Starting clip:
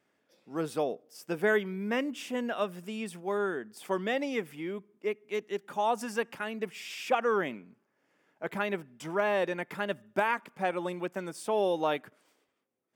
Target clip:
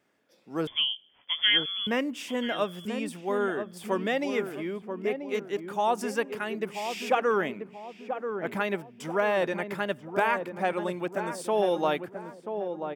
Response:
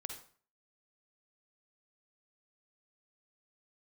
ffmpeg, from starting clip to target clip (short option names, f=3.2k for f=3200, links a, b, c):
-filter_complex "[0:a]asettb=1/sr,asplit=3[a][b][c];[a]atrim=end=0.674[d];[b]atrim=start=0.67:end=1.87,asetpts=PTS-STARTPTS,afade=t=in:d=0.004:c=qsin,afade=t=out:st=1.196:d=0.004:c=qsin,lowpass=f=3.1k:t=q:w=0.5098,lowpass=f=3.1k:t=q:w=0.6013,lowpass=f=3.1k:t=q:w=0.9,lowpass=f=3.1k:t=q:w=2.563,afreqshift=-3600[e];[c]atrim=start=1.866[f];[d][e]acrossfade=d=0.004:c1=hsin:c2=qsin[g];[g][f]acrossfade=d=0.004:c1=qsin:c2=hsin,asplit=2[h][i];[i]adelay=985,lowpass=f=860:p=1,volume=-6dB,asplit=2[j][k];[k]adelay=985,lowpass=f=860:p=1,volume=0.48,asplit=2[l][m];[m]adelay=985,lowpass=f=860:p=1,volume=0.48,asplit=2[n][o];[o]adelay=985,lowpass=f=860:p=1,volume=0.48,asplit=2[p][q];[q]adelay=985,lowpass=f=860:p=1,volume=0.48,asplit=2[r][s];[s]adelay=985,lowpass=f=860:p=1,volume=0.48[t];[j][l][n][p][r][t]amix=inputs=6:normalize=0[u];[h][u]amix=inputs=2:normalize=0,volume=2.5dB"